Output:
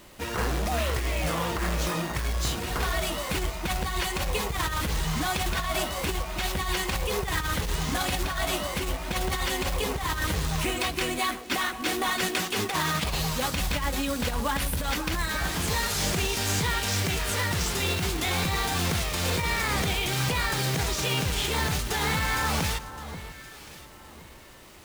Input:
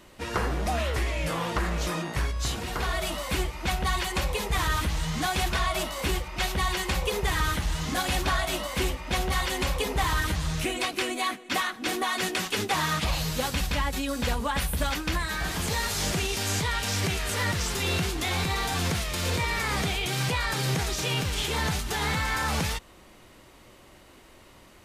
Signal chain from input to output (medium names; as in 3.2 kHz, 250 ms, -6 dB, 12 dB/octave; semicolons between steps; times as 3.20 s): companded quantiser 4-bit; echo whose repeats swap between lows and highs 535 ms, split 1.4 kHz, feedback 51%, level -11 dB; compressor with a negative ratio -26 dBFS, ratio -0.5